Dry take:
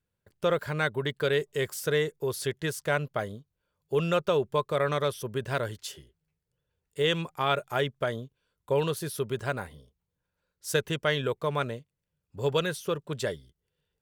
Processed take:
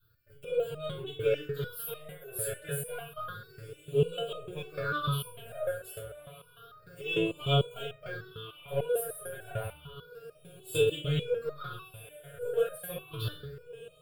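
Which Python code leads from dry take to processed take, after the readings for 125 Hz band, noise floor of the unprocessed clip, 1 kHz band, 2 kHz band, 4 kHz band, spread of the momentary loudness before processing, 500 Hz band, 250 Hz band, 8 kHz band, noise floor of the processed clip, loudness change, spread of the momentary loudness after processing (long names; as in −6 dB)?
−1.5 dB, −84 dBFS, −8.0 dB, −7.5 dB, −3.5 dB, 12 LU, −3.5 dB, −5.5 dB, −1.5 dB, −59 dBFS, −4.0 dB, 20 LU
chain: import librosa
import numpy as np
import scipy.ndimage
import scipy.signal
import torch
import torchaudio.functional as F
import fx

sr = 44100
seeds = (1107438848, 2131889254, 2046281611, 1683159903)

y = fx.high_shelf(x, sr, hz=4800.0, db=7.0)
y = fx.power_curve(y, sr, exponent=0.7)
y = fx.fixed_phaser(y, sr, hz=1300.0, stages=8)
y = fx.echo_diffused(y, sr, ms=1312, feedback_pct=50, wet_db=-15)
y = fx.rev_fdn(y, sr, rt60_s=0.59, lf_ratio=0.9, hf_ratio=0.5, size_ms=20.0, drr_db=-7.5)
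y = fx.phaser_stages(y, sr, stages=6, low_hz=270.0, high_hz=1500.0, hz=0.3, feedback_pct=45)
y = fx.resonator_held(y, sr, hz=6.7, low_hz=110.0, high_hz=620.0)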